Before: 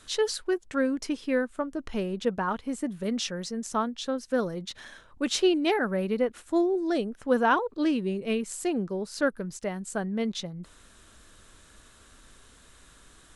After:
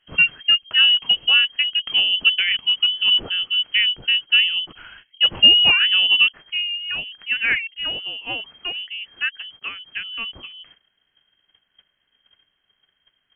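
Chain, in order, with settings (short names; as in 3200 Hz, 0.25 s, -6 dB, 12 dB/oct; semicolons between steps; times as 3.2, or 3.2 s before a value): gate -50 dBFS, range -18 dB; bell 220 Hz +9 dB 2.5 oct, from 6.28 s -6.5 dB; inverted band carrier 3200 Hz; gain +4 dB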